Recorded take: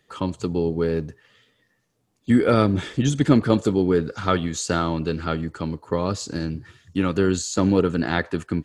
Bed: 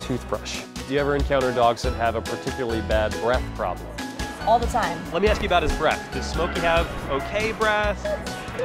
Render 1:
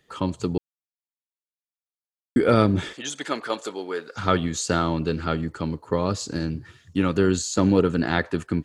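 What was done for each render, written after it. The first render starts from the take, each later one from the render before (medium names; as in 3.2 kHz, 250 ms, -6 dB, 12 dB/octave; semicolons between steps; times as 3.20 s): 0.58–2.36 s: mute; 2.93–4.16 s: high-pass 710 Hz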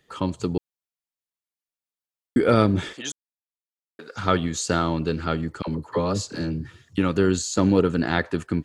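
3.12–3.99 s: mute; 5.62–6.98 s: phase dispersion lows, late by 54 ms, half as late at 660 Hz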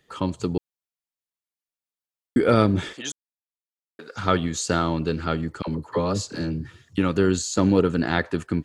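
no audible change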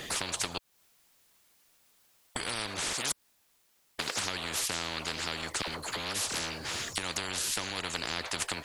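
compression 3:1, threshold -33 dBFS, peak gain reduction 15.5 dB; spectrum-flattening compressor 10:1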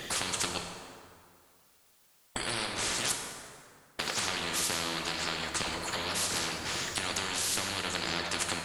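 plate-style reverb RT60 2.2 s, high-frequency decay 0.6×, DRR 2.5 dB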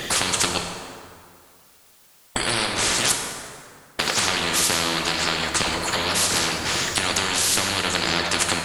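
trim +10.5 dB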